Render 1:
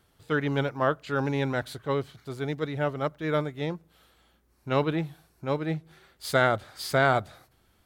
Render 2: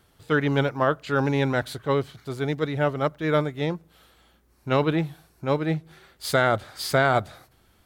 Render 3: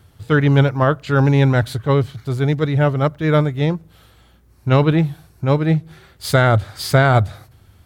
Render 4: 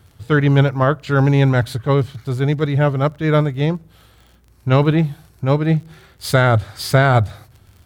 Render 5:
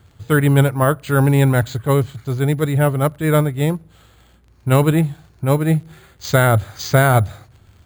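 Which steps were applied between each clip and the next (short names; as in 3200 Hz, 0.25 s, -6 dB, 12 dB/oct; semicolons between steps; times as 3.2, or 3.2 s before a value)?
maximiser +13 dB; gain -8.5 dB
bell 97 Hz +15 dB 1.2 oct; gain +4.5 dB
crackle 44/s -37 dBFS
careless resampling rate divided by 4×, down filtered, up hold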